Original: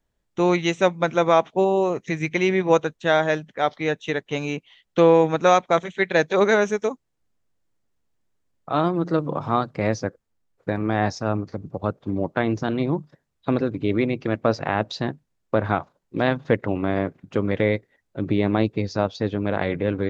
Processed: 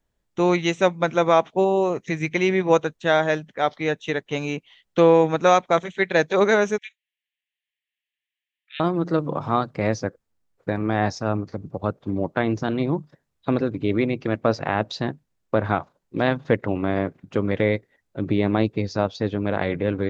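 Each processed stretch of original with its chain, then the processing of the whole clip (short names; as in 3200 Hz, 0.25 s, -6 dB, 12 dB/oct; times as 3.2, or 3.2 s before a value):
6.78–8.8 steep high-pass 1700 Hz 96 dB/oct + resonant high shelf 4100 Hz -11 dB, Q 3
whole clip: dry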